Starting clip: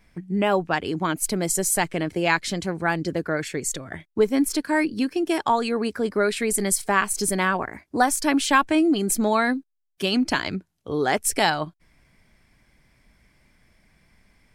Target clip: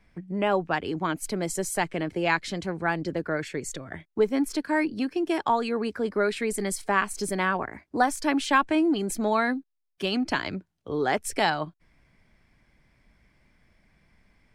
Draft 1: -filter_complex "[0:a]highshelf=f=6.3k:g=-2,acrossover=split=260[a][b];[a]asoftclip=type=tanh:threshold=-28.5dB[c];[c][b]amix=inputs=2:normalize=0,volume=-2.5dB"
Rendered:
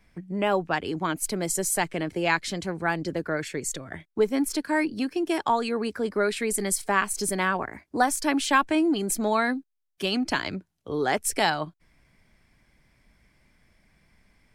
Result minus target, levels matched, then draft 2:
8000 Hz band +5.5 dB
-filter_complex "[0:a]highshelf=f=6.3k:g=-11.5,acrossover=split=260[a][b];[a]asoftclip=type=tanh:threshold=-28.5dB[c];[c][b]amix=inputs=2:normalize=0,volume=-2.5dB"

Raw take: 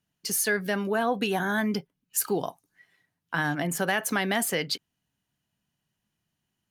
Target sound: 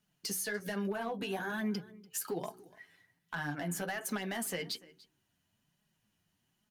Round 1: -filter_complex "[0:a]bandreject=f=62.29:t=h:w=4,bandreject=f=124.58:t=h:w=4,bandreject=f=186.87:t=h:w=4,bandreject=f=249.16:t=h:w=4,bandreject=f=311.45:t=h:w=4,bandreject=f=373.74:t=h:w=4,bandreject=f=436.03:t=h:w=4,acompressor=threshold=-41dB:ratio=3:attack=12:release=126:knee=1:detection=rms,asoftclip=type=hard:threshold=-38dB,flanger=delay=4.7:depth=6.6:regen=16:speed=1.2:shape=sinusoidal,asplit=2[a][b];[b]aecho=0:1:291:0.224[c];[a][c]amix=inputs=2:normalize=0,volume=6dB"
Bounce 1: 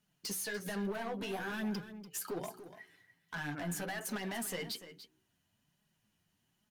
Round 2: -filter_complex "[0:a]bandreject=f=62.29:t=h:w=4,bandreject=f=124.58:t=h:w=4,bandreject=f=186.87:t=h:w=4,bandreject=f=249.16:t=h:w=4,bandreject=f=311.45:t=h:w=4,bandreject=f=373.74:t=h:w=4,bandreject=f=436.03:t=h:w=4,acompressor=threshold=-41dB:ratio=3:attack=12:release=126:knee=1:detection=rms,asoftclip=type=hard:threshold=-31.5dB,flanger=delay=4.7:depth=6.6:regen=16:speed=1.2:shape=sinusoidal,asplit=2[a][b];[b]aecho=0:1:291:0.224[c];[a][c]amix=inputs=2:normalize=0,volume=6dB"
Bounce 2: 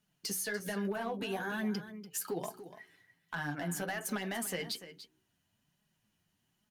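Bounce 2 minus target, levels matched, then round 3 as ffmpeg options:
echo-to-direct +8.5 dB
-filter_complex "[0:a]bandreject=f=62.29:t=h:w=4,bandreject=f=124.58:t=h:w=4,bandreject=f=186.87:t=h:w=4,bandreject=f=249.16:t=h:w=4,bandreject=f=311.45:t=h:w=4,bandreject=f=373.74:t=h:w=4,bandreject=f=436.03:t=h:w=4,acompressor=threshold=-41dB:ratio=3:attack=12:release=126:knee=1:detection=rms,asoftclip=type=hard:threshold=-31.5dB,flanger=delay=4.7:depth=6.6:regen=16:speed=1.2:shape=sinusoidal,asplit=2[a][b];[b]aecho=0:1:291:0.0841[c];[a][c]amix=inputs=2:normalize=0,volume=6dB"

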